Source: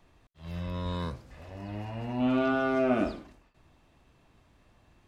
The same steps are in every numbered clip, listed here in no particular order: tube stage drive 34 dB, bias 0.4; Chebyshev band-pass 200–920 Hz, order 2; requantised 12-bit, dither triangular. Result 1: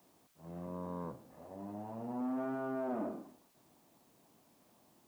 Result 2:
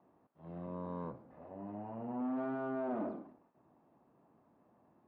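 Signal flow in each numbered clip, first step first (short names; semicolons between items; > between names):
tube stage > Chebyshev band-pass > requantised; tube stage > requantised > Chebyshev band-pass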